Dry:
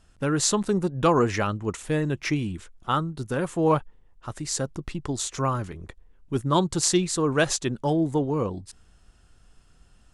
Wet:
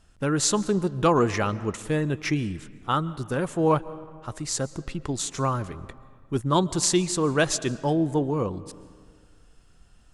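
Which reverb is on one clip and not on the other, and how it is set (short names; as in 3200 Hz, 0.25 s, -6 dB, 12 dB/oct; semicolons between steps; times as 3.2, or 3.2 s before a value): digital reverb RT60 1.9 s, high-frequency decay 0.6×, pre-delay 95 ms, DRR 17.5 dB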